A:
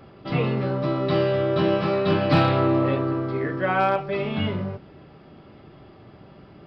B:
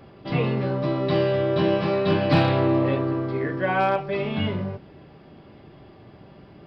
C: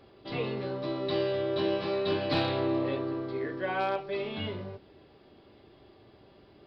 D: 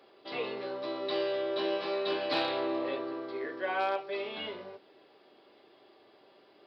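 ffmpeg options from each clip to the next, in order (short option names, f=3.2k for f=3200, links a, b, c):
-af "bandreject=f=1.3k:w=11"
-af "equalizer=f=160:t=o:w=0.67:g=-9,equalizer=f=400:t=o:w=0.67:g=4,equalizer=f=4k:t=o:w=0.67:g=9,volume=-9dB"
-af "highpass=410"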